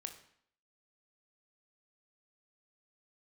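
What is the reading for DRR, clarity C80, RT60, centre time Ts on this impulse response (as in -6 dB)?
5.5 dB, 13.5 dB, 0.65 s, 13 ms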